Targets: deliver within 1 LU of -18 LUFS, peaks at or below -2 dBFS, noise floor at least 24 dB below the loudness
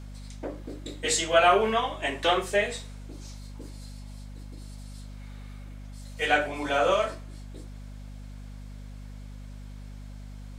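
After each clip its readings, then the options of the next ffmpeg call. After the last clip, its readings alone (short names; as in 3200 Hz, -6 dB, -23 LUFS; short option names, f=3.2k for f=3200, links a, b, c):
hum 50 Hz; harmonics up to 250 Hz; hum level -39 dBFS; loudness -25.5 LUFS; peak -7.5 dBFS; loudness target -18.0 LUFS
-> -af "bandreject=f=50:t=h:w=6,bandreject=f=100:t=h:w=6,bandreject=f=150:t=h:w=6,bandreject=f=200:t=h:w=6,bandreject=f=250:t=h:w=6"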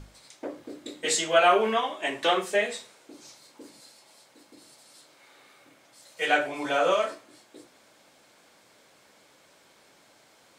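hum none; loudness -25.0 LUFS; peak -7.5 dBFS; loudness target -18.0 LUFS
-> -af "volume=7dB,alimiter=limit=-2dB:level=0:latency=1"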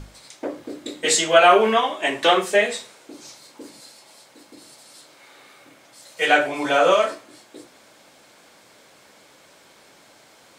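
loudness -18.0 LUFS; peak -2.0 dBFS; noise floor -53 dBFS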